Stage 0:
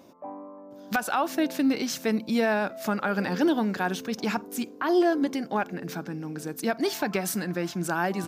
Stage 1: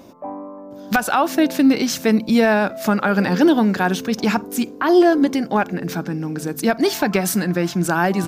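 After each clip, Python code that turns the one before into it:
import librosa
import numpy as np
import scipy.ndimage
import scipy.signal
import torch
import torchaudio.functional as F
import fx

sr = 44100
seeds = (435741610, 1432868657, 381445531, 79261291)

y = fx.low_shelf(x, sr, hz=110.0, db=10.5)
y = fx.hum_notches(y, sr, base_hz=50, count=3)
y = F.gain(torch.from_numpy(y), 8.0).numpy()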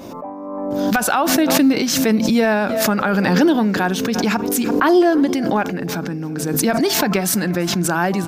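y = x + 10.0 ** (-22.0 / 20.0) * np.pad(x, (int(340 * sr / 1000.0), 0))[:len(x)]
y = fx.pre_swell(y, sr, db_per_s=29.0)
y = F.gain(torch.from_numpy(y), -1.0).numpy()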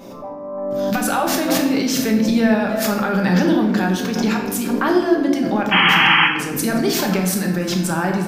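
y = fx.spec_paint(x, sr, seeds[0], shape='noise', start_s=5.71, length_s=0.56, low_hz=760.0, high_hz=3300.0, level_db=-11.0)
y = fx.room_shoebox(y, sr, seeds[1], volume_m3=410.0, walls='mixed', distance_m=1.2)
y = F.gain(torch.from_numpy(y), -5.0).numpy()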